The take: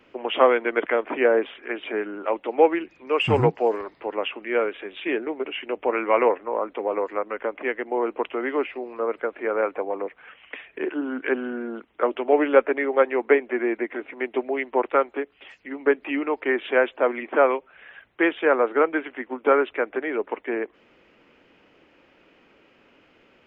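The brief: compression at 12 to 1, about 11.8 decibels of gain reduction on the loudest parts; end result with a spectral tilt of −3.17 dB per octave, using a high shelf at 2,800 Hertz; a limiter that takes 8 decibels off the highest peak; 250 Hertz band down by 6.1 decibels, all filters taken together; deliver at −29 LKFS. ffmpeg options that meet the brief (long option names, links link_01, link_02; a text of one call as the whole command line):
ffmpeg -i in.wav -af "equalizer=frequency=250:width_type=o:gain=-9,highshelf=frequency=2800:gain=-8.5,acompressor=threshold=-24dB:ratio=12,volume=4.5dB,alimiter=limit=-16.5dB:level=0:latency=1" out.wav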